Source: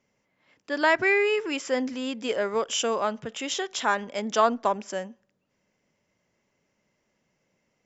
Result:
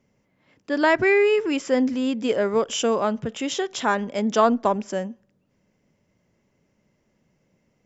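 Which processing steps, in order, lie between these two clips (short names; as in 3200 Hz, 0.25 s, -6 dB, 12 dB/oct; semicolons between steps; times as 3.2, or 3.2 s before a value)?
low shelf 430 Hz +11.5 dB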